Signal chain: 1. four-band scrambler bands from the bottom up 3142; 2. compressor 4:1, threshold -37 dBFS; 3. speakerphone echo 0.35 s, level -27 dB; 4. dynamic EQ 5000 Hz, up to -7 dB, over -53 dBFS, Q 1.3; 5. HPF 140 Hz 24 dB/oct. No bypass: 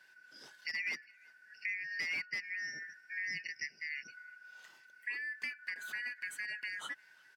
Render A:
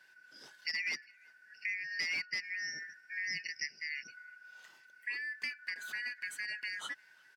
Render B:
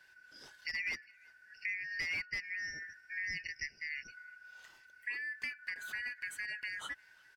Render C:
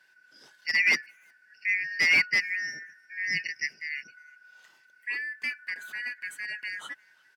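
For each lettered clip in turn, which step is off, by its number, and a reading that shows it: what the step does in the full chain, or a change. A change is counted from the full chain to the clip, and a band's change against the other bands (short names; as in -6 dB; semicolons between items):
4, 4 kHz band +5.0 dB; 5, 125 Hz band +5.0 dB; 2, mean gain reduction 6.0 dB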